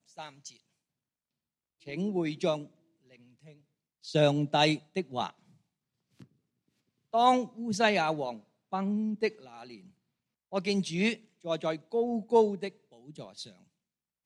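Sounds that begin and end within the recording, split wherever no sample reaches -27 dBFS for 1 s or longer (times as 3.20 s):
1.94–2.55 s
4.15–5.27 s
7.14–9.28 s
10.54–12.67 s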